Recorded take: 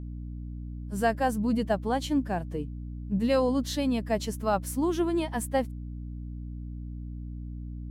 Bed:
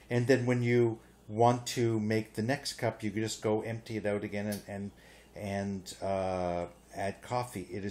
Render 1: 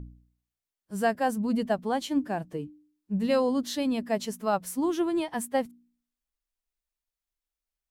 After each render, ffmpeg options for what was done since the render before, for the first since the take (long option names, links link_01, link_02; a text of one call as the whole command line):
ffmpeg -i in.wav -af "bandreject=frequency=60:width_type=h:width=4,bandreject=frequency=120:width_type=h:width=4,bandreject=frequency=180:width_type=h:width=4,bandreject=frequency=240:width_type=h:width=4,bandreject=frequency=300:width_type=h:width=4" out.wav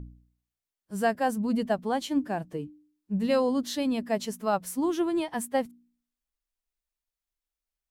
ffmpeg -i in.wav -af anull out.wav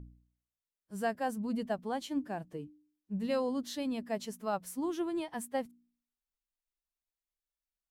ffmpeg -i in.wav -af "volume=-7.5dB" out.wav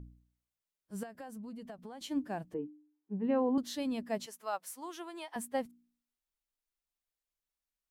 ffmpeg -i in.wav -filter_complex "[0:a]asettb=1/sr,asplit=3[link_01][link_02][link_03];[link_01]atrim=end=1.034[link_04];[link_02]atrim=start=1.03:end=2.01,asetpts=PTS-STARTPTS,afade=type=in:duration=0.004:curve=qsin,afade=type=out:start_time=0.976:duration=0.004:curve=qsin,acompressor=threshold=-42dB:ratio=12:attack=3.2:release=140:knee=1:detection=peak[link_05];[link_03]atrim=start=2.006[link_06];[link_04][link_05]acrossfade=duration=0.004:curve1=hsin:curve2=qsin[link_07];[link_07][link_06]acrossfade=duration=0.004:curve1=qsin:curve2=hsin,asettb=1/sr,asplit=3[link_08][link_09][link_10];[link_08]atrim=end=2.544[link_11];[link_09]atrim=start=2.54:end=3.58,asetpts=PTS-STARTPTS,afade=type=in:duration=0.004:curve=qsin,afade=type=out:start_time=1.036:duration=0.004:curve=qsin,highpass=200,equalizer=frequency=270:width_type=q:width=4:gain=7,equalizer=frequency=410:width_type=q:width=4:gain=9,equalizer=frequency=580:width_type=q:width=4:gain=-4,equalizer=frequency=850:width_type=q:width=4:gain=8,equalizer=frequency=1300:width_type=q:width=4:gain=-4,equalizer=frequency=2100:width_type=q:width=4:gain=-4,lowpass=frequency=2200:width=0.5412,lowpass=frequency=2200:width=1.3066[link_12];[link_10]atrim=start=3.576[link_13];[link_11][link_12]acrossfade=duration=0.004:curve1=hsin:curve2=qsin[link_14];[link_14][link_13]acrossfade=duration=0.004:curve1=qsin:curve2=hsin,asettb=1/sr,asplit=3[link_15][link_16][link_17];[link_15]atrim=end=4.264[link_18];[link_16]atrim=start=4.26:end=5.36,asetpts=PTS-STARTPTS,afade=type=in:duration=0.004:curve=qsin,afade=type=out:start_time=1.096:duration=0.004:curve=qsin,highpass=690[link_19];[link_17]atrim=start=5.356[link_20];[link_18][link_19]acrossfade=duration=0.004:curve1=hsin:curve2=qsin[link_21];[link_21][link_20]acrossfade=duration=0.004:curve1=qsin:curve2=hsin" out.wav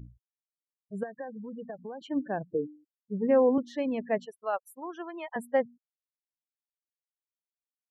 ffmpeg -i in.wav -af "afftfilt=real='re*gte(hypot(re,im),0.00631)':imag='im*gte(hypot(re,im),0.00631)':win_size=1024:overlap=0.75,equalizer=frequency=125:width_type=o:width=1:gain=7,equalizer=frequency=500:width_type=o:width=1:gain=10,equalizer=frequency=2000:width_type=o:width=1:gain=11,equalizer=frequency=4000:width_type=o:width=1:gain=-8,equalizer=frequency=8000:width_type=o:width=1:gain=-10" out.wav